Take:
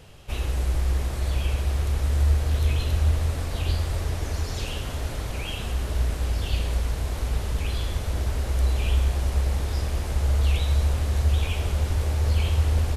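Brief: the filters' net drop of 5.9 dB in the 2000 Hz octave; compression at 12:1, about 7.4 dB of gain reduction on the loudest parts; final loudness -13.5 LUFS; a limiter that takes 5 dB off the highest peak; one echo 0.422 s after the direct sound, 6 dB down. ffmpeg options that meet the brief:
-af "equalizer=f=2k:t=o:g=-8,acompressor=threshold=-24dB:ratio=12,alimiter=limit=-22.5dB:level=0:latency=1,aecho=1:1:422:0.501,volume=17.5dB"

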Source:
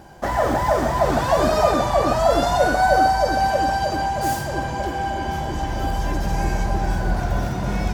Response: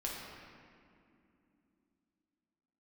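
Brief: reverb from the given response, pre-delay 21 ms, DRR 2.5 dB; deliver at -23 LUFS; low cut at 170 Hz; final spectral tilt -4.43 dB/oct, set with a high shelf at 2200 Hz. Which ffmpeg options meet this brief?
-filter_complex "[0:a]highpass=170,highshelf=f=2.2k:g=-6.5,asplit=2[a][b];[1:a]atrim=start_sample=2205,adelay=21[c];[b][c]afir=irnorm=-1:irlink=0,volume=-4.5dB[d];[a][d]amix=inputs=2:normalize=0,volume=-3dB"

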